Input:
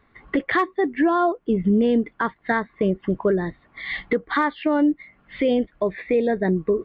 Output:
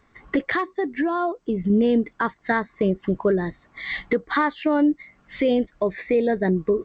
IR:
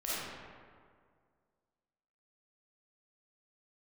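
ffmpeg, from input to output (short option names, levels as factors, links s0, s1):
-filter_complex "[0:a]asettb=1/sr,asplit=3[s0][s1][s2];[s0]atrim=end=0.514[s3];[s1]atrim=start=0.51:end=1.7,asetpts=PTS-STARTPTS,afade=t=in:d=0.004:c=qsin,afade=t=out:st=1.186:d=0.004:c=qsin,acompressor=threshold=0.0708:ratio=2[s4];[s2]atrim=start=1.696[s5];[s3][s4]acrossfade=d=0.004:c1=hsin:c2=qsin[s6];[s6][s5]acrossfade=d=0.004:c1=qsin:c2=hsin" -ar 16000 -c:a g722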